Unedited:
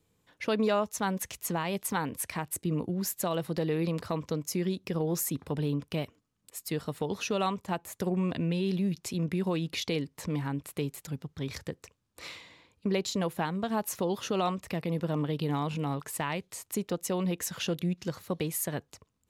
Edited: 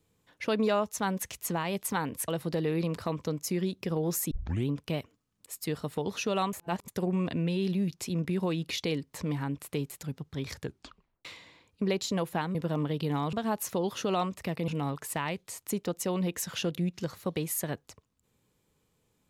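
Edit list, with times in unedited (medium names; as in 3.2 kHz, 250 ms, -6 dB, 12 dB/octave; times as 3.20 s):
2.28–3.32 s: delete
5.35 s: tape start 0.37 s
7.57–7.92 s: reverse
11.64 s: tape stop 0.65 s
14.94–15.72 s: move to 13.59 s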